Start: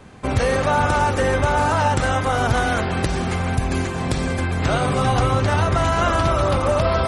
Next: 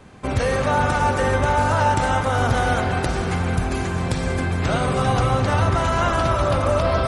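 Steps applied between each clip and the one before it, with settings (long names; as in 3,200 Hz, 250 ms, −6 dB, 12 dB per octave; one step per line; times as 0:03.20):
convolution reverb RT60 5.0 s, pre-delay 38 ms, DRR 6.5 dB
level −2 dB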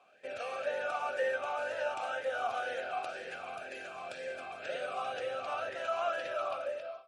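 fade-out on the ending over 0.64 s
spectral tilt +3.5 dB per octave
formant filter swept between two vowels a-e 2 Hz
level −3.5 dB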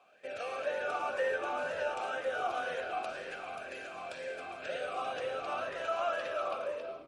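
echo with shifted repeats 110 ms, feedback 54%, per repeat −89 Hz, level −13 dB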